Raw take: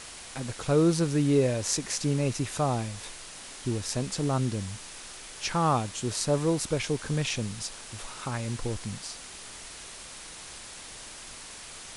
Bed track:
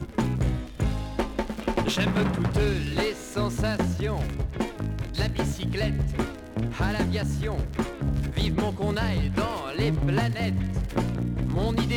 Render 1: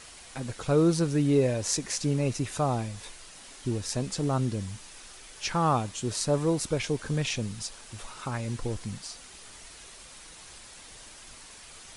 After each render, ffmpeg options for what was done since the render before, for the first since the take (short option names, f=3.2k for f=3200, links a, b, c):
-af "afftdn=nr=6:nf=-44"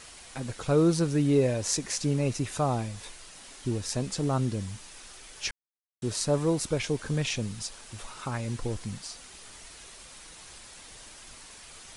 -filter_complex "[0:a]asplit=3[a][b][c];[a]atrim=end=5.51,asetpts=PTS-STARTPTS,afade=t=out:st=5.506:d=0.004:c=hsin[d];[b]atrim=start=5.51:end=6.02,asetpts=PTS-STARTPTS,volume=0[e];[c]atrim=start=6.02,asetpts=PTS-STARTPTS,afade=t=in:d=0.004:c=hsin[f];[d][e][f]concat=n=3:v=0:a=1"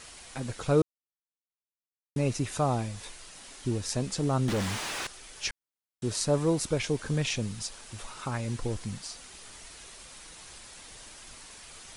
-filter_complex "[0:a]asettb=1/sr,asplit=3[a][b][c];[a]atrim=end=4.484[d];[b]atrim=start=4.48:end=5.07,asetpts=PTS-STARTPTS,afade=t=in:d=0.004:c=qsin,afade=t=out:st=0.586:d=0.004:c=qsin,asplit=2[e][f];[f]highpass=f=720:p=1,volume=38dB,asoftclip=type=tanh:threshold=-20.5dB[g];[e][g]amix=inputs=2:normalize=0,lowpass=f=1.9k:p=1,volume=-6dB[h];[c]atrim=start=5.066[i];[d][h]acrossfade=d=0.004:c1=hsin:c2=qsin[j];[j][i]acrossfade=d=0.004:c1=qsin:c2=hsin,asplit=3[k][l][m];[k]atrim=end=0.82,asetpts=PTS-STARTPTS,afade=t=out:st=0.816:d=0.004:c=hsin[n];[l]atrim=start=0.82:end=2.16,asetpts=PTS-STARTPTS,volume=0[o];[m]atrim=start=2.16,asetpts=PTS-STARTPTS,afade=t=in:d=0.004:c=hsin[p];[n][o][p]concat=n=3:v=0:a=1"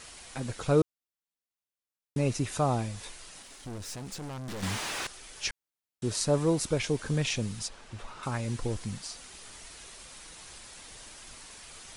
-filter_complex "[0:a]asettb=1/sr,asplit=3[a][b][c];[a]atrim=end=3.424[d];[b]atrim=start=3.42:end=4.63,asetpts=PTS-STARTPTS,afade=t=in:d=0.004:c=qsin,afade=t=out:st=1.206:d=0.004:c=qsin,aeval=exprs='(tanh(70.8*val(0)+0.5)-tanh(0.5))/70.8':c=same[e];[c]atrim=start=4.626[f];[d][e]acrossfade=d=0.004:c1=hsin:c2=qsin[g];[g][f]acrossfade=d=0.004:c1=qsin:c2=hsin,asettb=1/sr,asplit=3[h][i][j];[h]atrim=end=7.684[k];[i]atrim=start=7.68:end=8.23,asetpts=PTS-STARTPTS,afade=t=in:d=0.004:c=qsin,afade=t=out:st=0.546:d=0.004:c=qsin,aemphasis=mode=reproduction:type=75fm[l];[j]atrim=start=8.226[m];[k][l]acrossfade=d=0.004:c1=hsin:c2=qsin[n];[n][m]acrossfade=d=0.004:c1=qsin:c2=hsin"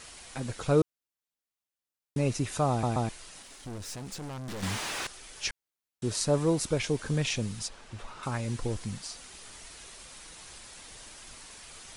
-filter_complex "[0:a]asplit=4[a][b][c][d];[a]atrim=end=2.832[e];[b]atrim=start=2.698:end=2.832[f];[c]atrim=start=2.698:end=2.832[g];[d]atrim=start=3.088[h];[e][f]acrossfade=d=0.004:c1=hsin:c2=hsin[i];[i][g]acrossfade=d=0.004:c1=hsin:c2=hsin[j];[j][h]acrossfade=d=0.004:c1=hsin:c2=hsin"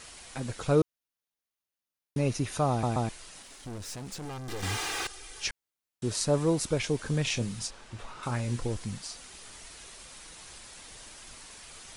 -filter_complex "[0:a]asettb=1/sr,asplit=3[a][b][c];[a]atrim=end=0.754[d];[b]atrim=start=0.75:end=2.83,asetpts=PTS-STARTPTS,afade=t=in:d=0.004:c=qsin,afade=t=out:st=2.076:d=0.004:c=qsin,bandreject=f=7.7k:w=6.6[e];[c]atrim=start=2.826[f];[d][e]acrossfade=d=0.004:c1=hsin:c2=qsin[g];[g][f]acrossfade=d=0.004:c1=qsin:c2=hsin,asettb=1/sr,asplit=3[h][i][j];[h]atrim=end=4.254[k];[i]atrim=start=4.25:end=5.43,asetpts=PTS-STARTPTS,afade=t=in:d=0.004:c=qsin,afade=t=out:st=1.176:d=0.004:c=qsin,aecho=1:1:2.5:0.65,atrim=end_sample=52038[l];[j]atrim=start=5.426[m];[k][l]acrossfade=d=0.004:c1=hsin:c2=qsin[n];[n][m]acrossfade=d=0.004:c1=qsin:c2=hsin,asettb=1/sr,asplit=3[o][p][q];[o]atrim=end=7.244[r];[p]atrim=start=7.24:end=8.64,asetpts=PTS-STARTPTS,afade=t=in:d=0.004:c=qsin,afade=t=out:st=1.396:d=0.004:c=qsin,asplit=2[s][t];[t]adelay=25,volume=-9dB[u];[s][u]amix=inputs=2:normalize=0,atrim=end_sample=61740[v];[q]atrim=start=8.636[w];[r][v]acrossfade=d=0.004:c1=hsin:c2=qsin[x];[x][w]acrossfade=d=0.004:c1=qsin:c2=hsin"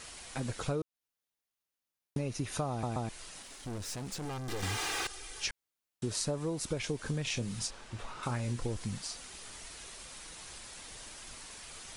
-af "acompressor=threshold=-30dB:ratio=16"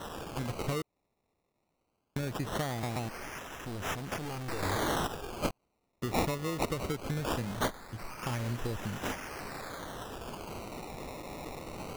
-af "aexciter=amount=2.5:drive=3.4:freq=3.4k,acrusher=samples=19:mix=1:aa=0.000001:lfo=1:lforange=19:lforate=0.2"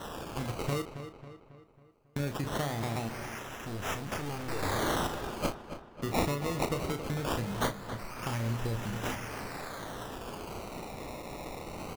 -filter_complex "[0:a]asplit=2[a][b];[b]adelay=35,volume=-8.5dB[c];[a][c]amix=inputs=2:normalize=0,asplit=2[d][e];[e]adelay=273,lowpass=f=3.6k:p=1,volume=-10.5dB,asplit=2[f][g];[g]adelay=273,lowpass=f=3.6k:p=1,volume=0.51,asplit=2[h][i];[i]adelay=273,lowpass=f=3.6k:p=1,volume=0.51,asplit=2[j][k];[k]adelay=273,lowpass=f=3.6k:p=1,volume=0.51,asplit=2[l][m];[m]adelay=273,lowpass=f=3.6k:p=1,volume=0.51,asplit=2[n][o];[o]adelay=273,lowpass=f=3.6k:p=1,volume=0.51[p];[f][h][j][l][n][p]amix=inputs=6:normalize=0[q];[d][q]amix=inputs=2:normalize=0"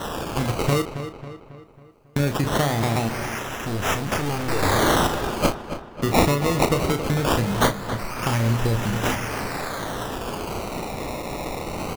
-af "volume=11.5dB"